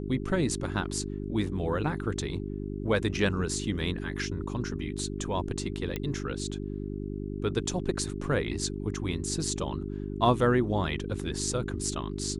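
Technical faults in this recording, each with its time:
hum 50 Hz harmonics 8 -35 dBFS
5.96 pop -17 dBFS

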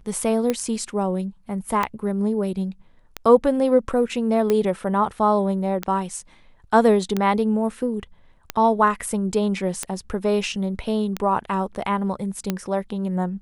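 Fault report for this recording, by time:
tick 45 rpm -9 dBFS

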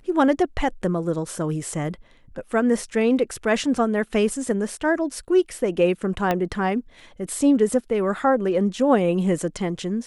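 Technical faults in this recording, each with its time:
6.31 pop -9 dBFS

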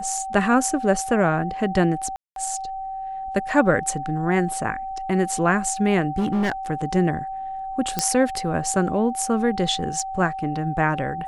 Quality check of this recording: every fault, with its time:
tone 770 Hz -28 dBFS
2.16–2.36 gap 0.202 s
6.18–6.52 clipped -18 dBFS
7.99 pop -5 dBFS

